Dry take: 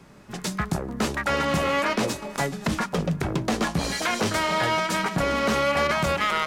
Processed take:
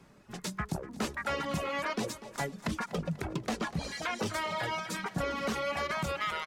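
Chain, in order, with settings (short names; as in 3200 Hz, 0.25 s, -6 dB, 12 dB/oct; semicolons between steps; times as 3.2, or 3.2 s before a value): reverb removal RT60 1.9 s; 3.56–4.19 high shelf 8800 Hz -11.5 dB; feedback echo 0.245 s, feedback 45%, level -16 dB; gain -7.5 dB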